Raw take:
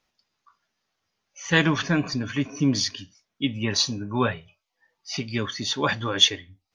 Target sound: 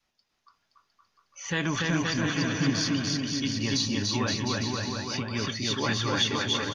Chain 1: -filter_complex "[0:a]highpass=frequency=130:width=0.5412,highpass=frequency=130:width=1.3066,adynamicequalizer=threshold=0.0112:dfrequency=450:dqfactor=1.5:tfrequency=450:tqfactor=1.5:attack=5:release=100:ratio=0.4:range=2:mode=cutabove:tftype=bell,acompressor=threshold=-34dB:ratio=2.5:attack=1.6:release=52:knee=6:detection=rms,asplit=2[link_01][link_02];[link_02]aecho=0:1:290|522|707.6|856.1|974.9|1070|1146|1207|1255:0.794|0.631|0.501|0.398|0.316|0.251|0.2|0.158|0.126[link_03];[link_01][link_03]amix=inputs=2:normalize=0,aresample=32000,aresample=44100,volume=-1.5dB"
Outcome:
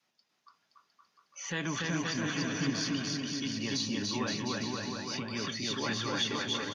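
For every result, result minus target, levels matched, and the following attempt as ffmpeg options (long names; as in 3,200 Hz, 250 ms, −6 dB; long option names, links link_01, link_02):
downward compressor: peak gain reduction +6.5 dB; 125 Hz band −2.5 dB
-filter_complex "[0:a]highpass=frequency=130:width=0.5412,highpass=frequency=130:width=1.3066,adynamicequalizer=threshold=0.0112:dfrequency=450:dqfactor=1.5:tfrequency=450:tqfactor=1.5:attack=5:release=100:ratio=0.4:range=2:mode=cutabove:tftype=bell,acompressor=threshold=-23.5dB:ratio=2.5:attack=1.6:release=52:knee=6:detection=rms,asplit=2[link_01][link_02];[link_02]aecho=0:1:290|522|707.6|856.1|974.9|1070|1146|1207|1255:0.794|0.631|0.501|0.398|0.316|0.251|0.2|0.158|0.126[link_03];[link_01][link_03]amix=inputs=2:normalize=0,aresample=32000,aresample=44100,volume=-1.5dB"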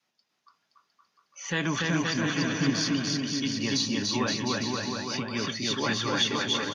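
125 Hz band −2.5 dB
-filter_complex "[0:a]adynamicequalizer=threshold=0.0112:dfrequency=450:dqfactor=1.5:tfrequency=450:tqfactor=1.5:attack=5:release=100:ratio=0.4:range=2:mode=cutabove:tftype=bell,acompressor=threshold=-23.5dB:ratio=2.5:attack=1.6:release=52:knee=6:detection=rms,asplit=2[link_01][link_02];[link_02]aecho=0:1:290|522|707.6|856.1|974.9|1070|1146|1207|1255:0.794|0.631|0.501|0.398|0.316|0.251|0.2|0.158|0.126[link_03];[link_01][link_03]amix=inputs=2:normalize=0,aresample=32000,aresample=44100,volume=-1.5dB"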